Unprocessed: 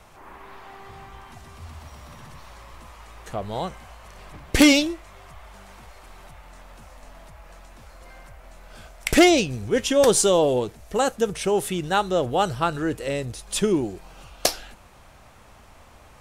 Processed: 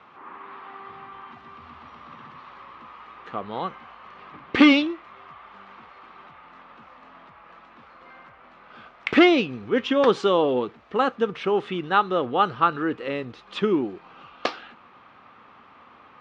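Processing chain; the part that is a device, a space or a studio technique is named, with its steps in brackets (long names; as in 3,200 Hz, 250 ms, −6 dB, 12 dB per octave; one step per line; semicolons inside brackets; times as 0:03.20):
kitchen radio (loudspeaker in its box 210–3,400 Hz, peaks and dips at 250 Hz +4 dB, 630 Hz −7 dB, 1,200 Hz +9 dB)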